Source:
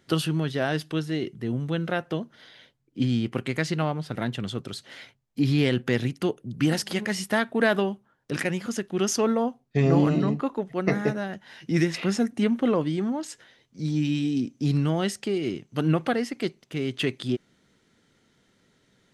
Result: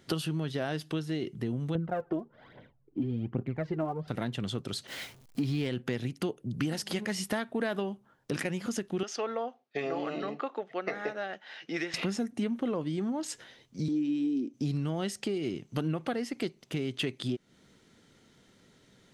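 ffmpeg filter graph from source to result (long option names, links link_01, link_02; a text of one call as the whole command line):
ffmpeg -i in.wav -filter_complex "[0:a]asettb=1/sr,asplit=3[link_01][link_02][link_03];[link_01]atrim=end=1.754[link_04];[link_02]atrim=start=1.75:end=4.08,asetpts=PTS-STARTPTS,afade=type=in:duration=0.004:curve=qsin,afade=type=out:start_time=2.326:duration=0.004:curve=qsin,lowpass=1100,aphaser=in_gain=1:out_gain=1:delay=3.2:decay=0.66:speed=1.2:type=triangular[link_05];[link_03]atrim=start=4.076[link_06];[link_04][link_05]acrossfade=duration=0.004:curve1=hsin:curve2=qsin[link_07];[link_07][link_06]acrossfade=duration=0.004:curve1=qsin:curve2=hsin,asettb=1/sr,asplit=3[link_08][link_09][link_10];[link_08]atrim=end=4.874[link_11];[link_09]atrim=start=4.87:end=5.68,asetpts=PTS-STARTPTS,afade=type=in:duration=0.004:curve=qsin,afade=type=out:start_time=0.806:duration=0.004:curve=qsin,aeval=exprs='val(0)+0.5*0.0133*sgn(val(0))':channel_layout=same,agate=range=-33dB:threshold=-35dB:ratio=3:release=100:detection=peak[link_12];[link_10]atrim=start=5.676[link_13];[link_11][link_12]acrossfade=duration=0.004:curve1=hsin:curve2=qsin[link_14];[link_14][link_13]acrossfade=duration=0.004:curve1=qsin:curve2=hsin,asettb=1/sr,asplit=3[link_15][link_16][link_17];[link_15]atrim=end=9.034[link_18];[link_16]atrim=start=9.03:end=11.94,asetpts=PTS-STARTPTS,afade=type=in:duration=0.004:curve=qsin,afade=type=out:start_time=2.906:duration=0.004:curve=qsin,highpass=580,lowpass=3800,bandreject=frequency=980:width=6[link_19];[link_17]atrim=start=11.936[link_20];[link_18][link_19]acrossfade=duration=0.004:curve1=hsin:curve2=qsin[link_21];[link_21][link_20]acrossfade=duration=0.004:curve1=qsin:curve2=hsin,asettb=1/sr,asplit=3[link_22][link_23][link_24];[link_22]atrim=end=13.884[link_25];[link_23]atrim=start=13.88:end=14.54,asetpts=PTS-STARTPTS,afade=type=in:duration=0.004:curve=qsin,afade=type=out:start_time=0.656:duration=0.004:curve=qsin,highpass=frequency=320:width_type=q:width=2.6,highshelf=frequency=2500:gain=-8[link_26];[link_24]atrim=start=14.536[link_27];[link_25][link_26]acrossfade=duration=0.004:curve1=hsin:curve2=qsin[link_28];[link_28][link_27]acrossfade=duration=0.004:curve1=qsin:curve2=hsin,equalizer=frequency=1700:width=1.5:gain=-2.5,acompressor=threshold=-34dB:ratio=4,volume=3.5dB" out.wav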